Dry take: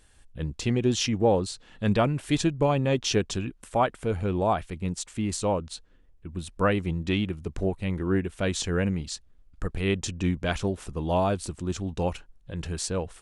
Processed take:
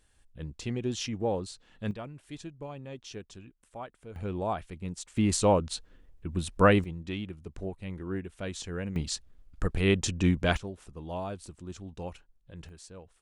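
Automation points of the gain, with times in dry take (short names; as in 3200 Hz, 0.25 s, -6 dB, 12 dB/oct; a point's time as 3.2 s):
-8 dB
from 1.91 s -18 dB
from 4.16 s -7 dB
from 5.17 s +3 dB
from 6.84 s -9.5 dB
from 8.96 s +1.5 dB
from 10.57 s -11.5 dB
from 12.69 s -18.5 dB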